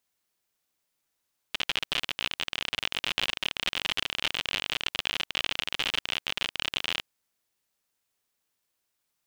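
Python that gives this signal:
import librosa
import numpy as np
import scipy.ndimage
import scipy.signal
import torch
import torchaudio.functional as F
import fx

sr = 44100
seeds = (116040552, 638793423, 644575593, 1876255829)

y = fx.geiger_clicks(sr, seeds[0], length_s=5.47, per_s=59.0, level_db=-12.0)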